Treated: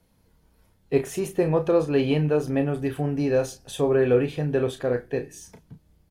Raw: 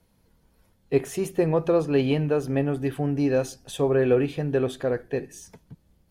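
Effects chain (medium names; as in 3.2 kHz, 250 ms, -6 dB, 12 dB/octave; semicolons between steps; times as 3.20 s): doubling 33 ms -8 dB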